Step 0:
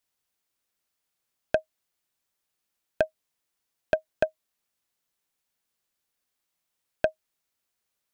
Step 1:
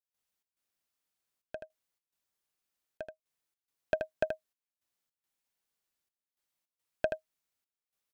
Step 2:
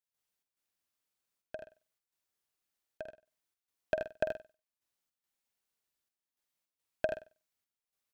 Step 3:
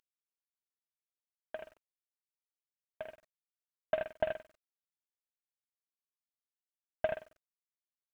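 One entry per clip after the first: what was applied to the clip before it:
on a send: delay 79 ms -6.5 dB; on the sum: trance gate ".xx.xxxxxx." 106 bpm -12 dB; trim -6 dB
flutter echo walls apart 8.2 m, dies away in 0.3 s; trim -1.5 dB
CVSD coder 16 kbps; word length cut 12-bit, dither none; trim +1.5 dB

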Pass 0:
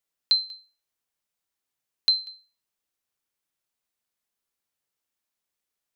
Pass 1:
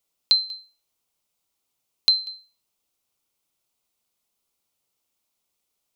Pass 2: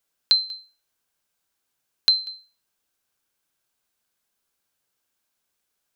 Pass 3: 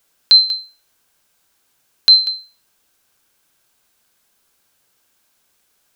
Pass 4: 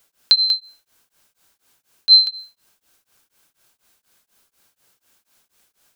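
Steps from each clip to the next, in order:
peaking EQ 1.7 kHz -11.5 dB 0.41 oct; in parallel at +2.5 dB: compression, threshold -29 dBFS, peak gain reduction 11 dB
peaking EQ 1.6 kHz +14.5 dB 0.27 oct
loudness maximiser +14 dB
tremolo of two beating tones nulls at 4.1 Hz; trim +3.5 dB

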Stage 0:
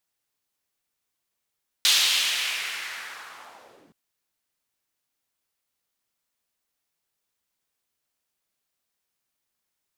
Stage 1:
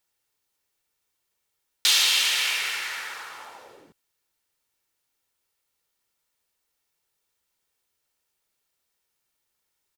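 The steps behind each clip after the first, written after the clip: comb 2.2 ms, depth 30%; in parallel at -0.5 dB: peak limiter -17 dBFS, peak gain reduction 9.5 dB; on the sum: trim -3 dB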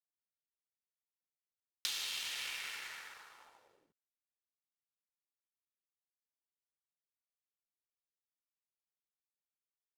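compression 4:1, threshold -25 dBFS, peak gain reduction 8 dB; power-law waveshaper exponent 1.4; trim -7.5 dB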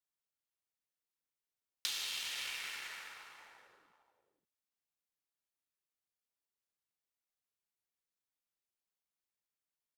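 echo from a far wall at 91 m, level -10 dB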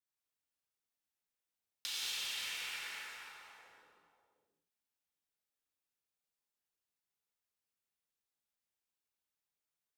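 gated-style reverb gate 260 ms flat, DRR -5 dB; trim -6 dB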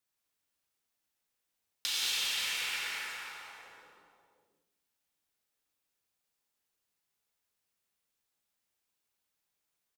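delay 186 ms -12 dB; trim +7 dB

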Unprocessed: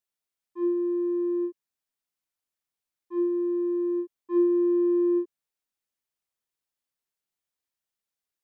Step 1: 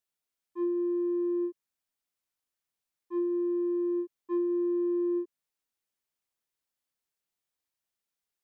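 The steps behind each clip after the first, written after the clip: compression, threshold -27 dBFS, peak gain reduction 8.5 dB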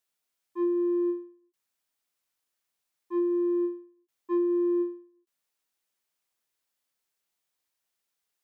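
bass shelf 270 Hz -6.5 dB; endings held to a fixed fall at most 130 dB/s; trim +5.5 dB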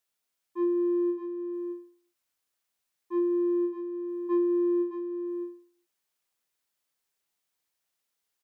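delay 617 ms -8 dB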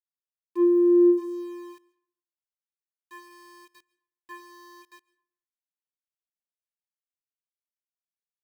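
high-pass sweep 250 Hz -> 1.7 kHz, 0.82–2.42 s; small samples zeroed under -49.5 dBFS; on a send at -21.5 dB: reverberation RT60 0.70 s, pre-delay 100 ms; on the sum: trim +2 dB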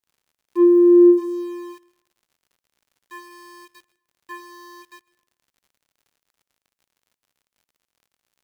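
crackle 89 per s -57 dBFS; trim +6.5 dB

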